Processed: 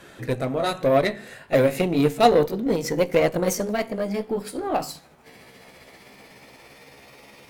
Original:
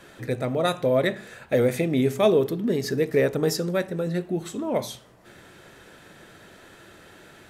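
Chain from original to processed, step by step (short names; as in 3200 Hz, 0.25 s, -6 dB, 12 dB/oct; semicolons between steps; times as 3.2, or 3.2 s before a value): gliding pitch shift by +6 st starting unshifted; added harmonics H 3 -19 dB, 8 -28 dB, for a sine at -8 dBFS; gain +5.5 dB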